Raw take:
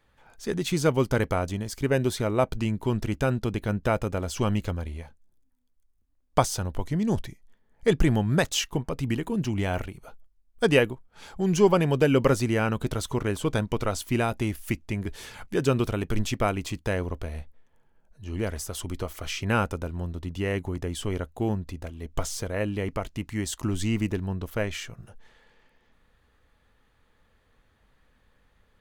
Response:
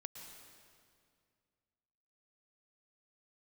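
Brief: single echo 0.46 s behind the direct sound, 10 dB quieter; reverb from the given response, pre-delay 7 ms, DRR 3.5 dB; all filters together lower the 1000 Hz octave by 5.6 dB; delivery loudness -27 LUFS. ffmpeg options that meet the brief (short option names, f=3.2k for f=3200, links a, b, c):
-filter_complex "[0:a]equalizer=f=1k:t=o:g=-8,aecho=1:1:460:0.316,asplit=2[a][b];[1:a]atrim=start_sample=2205,adelay=7[c];[b][c]afir=irnorm=-1:irlink=0,volume=0.5dB[d];[a][d]amix=inputs=2:normalize=0,volume=-0.5dB"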